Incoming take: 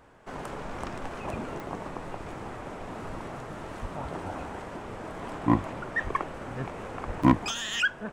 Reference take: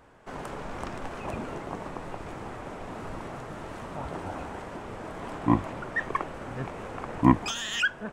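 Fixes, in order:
clipped peaks rebuilt −10 dBFS
click removal
high-pass at the plosives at 0:03.81/0:06.03/0:07.06
repair the gap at 0:07.23, 5.3 ms

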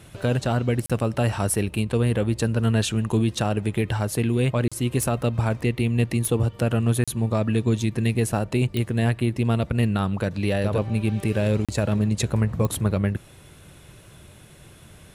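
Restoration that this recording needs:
click removal
repair the gap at 0:00.86/0:04.68/0:07.04/0:11.65, 36 ms

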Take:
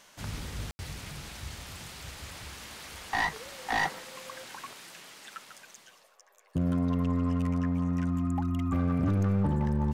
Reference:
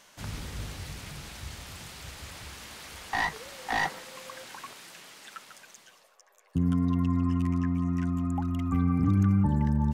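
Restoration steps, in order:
clipped peaks rebuilt −22.5 dBFS
ambience match 0:00.71–0:00.79

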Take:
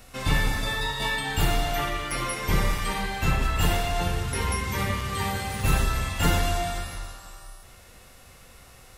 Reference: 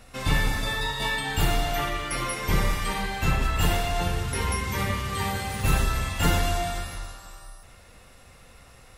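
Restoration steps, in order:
hum removal 374 Hz, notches 37
repair the gap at 0:02.11/0:02.78/0:05.01, 3.3 ms

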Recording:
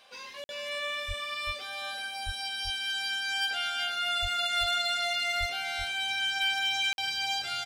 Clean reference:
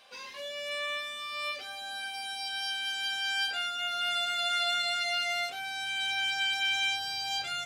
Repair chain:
clipped peaks rebuilt −23 dBFS
high-pass at the plosives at 0:01.07/0:02.25/0:04.21/0:05.39
repair the gap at 0:00.44/0:06.93, 51 ms
echo removal 385 ms −5.5 dB

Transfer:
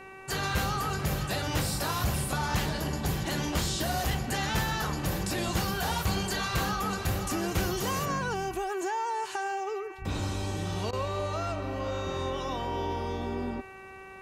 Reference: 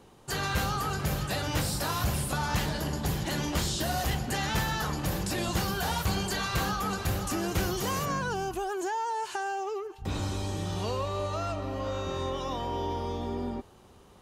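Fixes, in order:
hum removal 383.4 Hz, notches 7
repair the gap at 0:10.91, 18 ms

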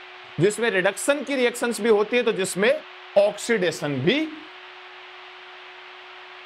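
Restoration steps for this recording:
hum removal 366.1 Hz, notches 3
noise reduction from a noise print 24 dB

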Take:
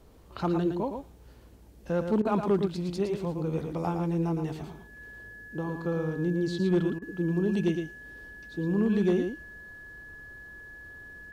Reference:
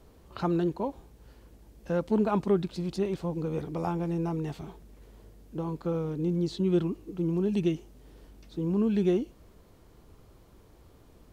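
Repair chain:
clipped peaks rebuilt −18 dBFS
notch filter 1,700 Hz, Q 30
repair the gap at 0:02.22/0:06.99, 29 ms
echo removal 113 ms −6.5 dB

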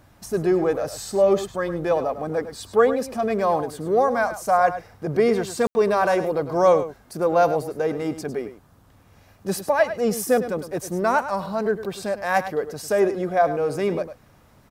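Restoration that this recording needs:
ambience match 0:05.67–0:05.75
echo removal 103 ms −12 dB

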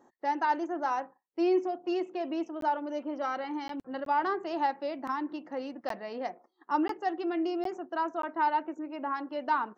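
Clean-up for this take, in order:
repair the gap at 0:02.61/0:03.68/0:04.05/0:05.89/0:06.88/0:07.64/0:08.22, 13 ms

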